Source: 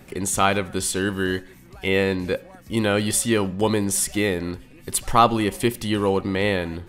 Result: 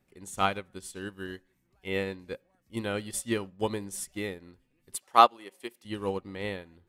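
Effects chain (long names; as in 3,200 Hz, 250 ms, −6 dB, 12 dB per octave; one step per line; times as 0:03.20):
0:04.96–0:05.85: high-pass filter 400 Hz 12 dB per octave
expander for the loud parts 2.5 to 1, over −29 dBFS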